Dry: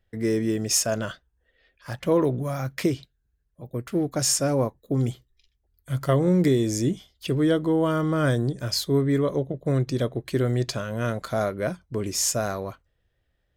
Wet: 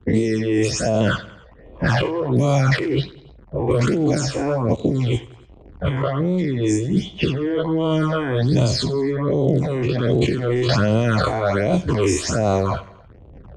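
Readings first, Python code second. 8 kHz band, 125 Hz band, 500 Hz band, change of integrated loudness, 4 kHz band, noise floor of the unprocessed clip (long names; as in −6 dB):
−4.0 dB, +6.5 dB, +5.0 dB, +4.5 dB, +3.5 dB, −73 dBFS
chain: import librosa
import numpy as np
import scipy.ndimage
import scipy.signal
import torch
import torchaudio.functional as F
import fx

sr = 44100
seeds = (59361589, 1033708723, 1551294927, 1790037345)

p1 = fx.spec_dilate(x, sr, span_ms=120)
p2 = scipy.signal.sosfilt(scipy.signal.butter(2, 48.0, 'highpass', fs=sr, output='sos'), p1)
p3 = fx.dmg_crackle(p2, sr, seeds[0], per_s=120.0, level_db=-40.0)
p4 = scipy.signal.sosfilt(scipy.signal.butter(6, 8900.0, 'lowpass', fs=sr, output='sos'), p3)
p5 = fx.high_shelf(p4, sr, hz=4600.0, db=-8.0)
p6 = fx.over_compress(p5, sr, threshold_db=-26.0, ratio=-1.0)
p7 = fx.phaser_stages(p6, sr, stages=8, low_hz=170.0, high_hz=1700.0, hz=1.3, feedback_pct=5)
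p8 = fx.env_lowpass(p7, sr, base_hz=470.0, full_db=-23.0)
p9 = p8 + fx.echo_feedback(p8, sr, ms=92, feedback_pct=48, wet_db=-21.0, dry=0)
p10 = fx.band_squash(p9, sr, depth_pct=70)
y = p10 * librosa.db_to_amplitude(8.5)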